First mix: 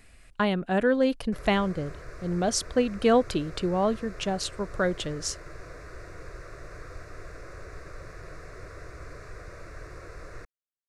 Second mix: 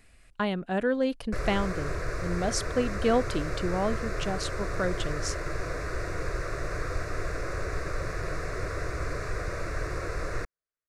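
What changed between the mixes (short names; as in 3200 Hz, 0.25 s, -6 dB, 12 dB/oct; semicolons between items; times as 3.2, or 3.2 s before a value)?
speech -3.5 dB; background +10.5 dB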